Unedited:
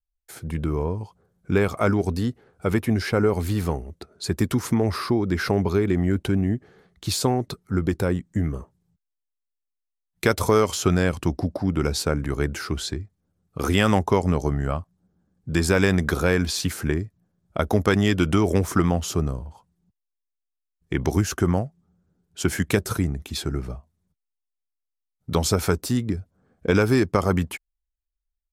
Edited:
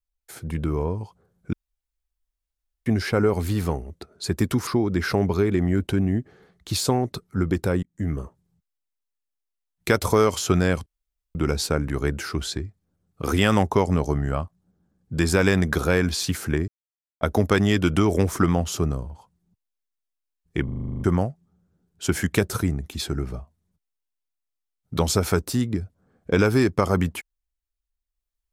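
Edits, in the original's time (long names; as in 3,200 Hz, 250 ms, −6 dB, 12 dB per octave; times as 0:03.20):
0:01.53–0:02.86: fill with room tone
0:04.67–0:05.03: remove
0:08.19–0:08.49: fade in
0:11.22–0:11.71: fill with room tone
0:17.04–0:17.57: silence
0:21.00: stutter in place 0.04 s, 10 plays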